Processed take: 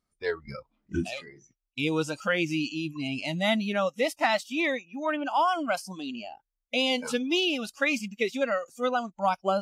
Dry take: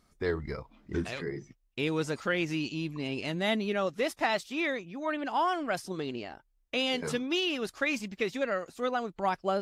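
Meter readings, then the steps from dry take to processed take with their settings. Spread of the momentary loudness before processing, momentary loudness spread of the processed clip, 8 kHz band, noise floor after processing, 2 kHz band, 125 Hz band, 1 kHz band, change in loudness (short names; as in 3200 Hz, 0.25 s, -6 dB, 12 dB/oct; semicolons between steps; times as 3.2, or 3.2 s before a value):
8 LU, 11 LU, +4.0 dB, -84 dBFS, +3.5 dB, +0.5 dB, +4.0 dB, +3.5 dB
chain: spectral noise reduction 19 dB; gain +4 dB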